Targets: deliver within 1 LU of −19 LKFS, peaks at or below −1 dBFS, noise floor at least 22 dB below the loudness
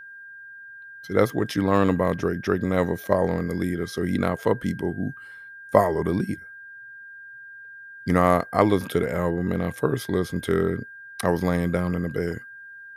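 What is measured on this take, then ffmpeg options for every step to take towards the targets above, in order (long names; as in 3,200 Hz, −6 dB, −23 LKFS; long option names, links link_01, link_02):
interfering tone 1,600 Hz; level of the tone −40 dBFS; integrated loudness −24.5 LKFS; sample peak −1.5 dBFS; target loudness −19.0 LKFS
→ -af "bandreject=frequency=1600:width=30"
-af "volume=5.5dB,alimiter=limit=-1dB:level=0:latency=1"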